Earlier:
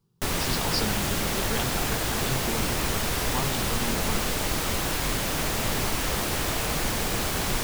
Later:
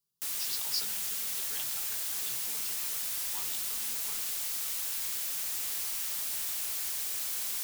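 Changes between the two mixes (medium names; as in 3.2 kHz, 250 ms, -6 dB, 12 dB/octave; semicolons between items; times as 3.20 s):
background -4.0 dB; master: add pre-emphasis filter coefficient 0.97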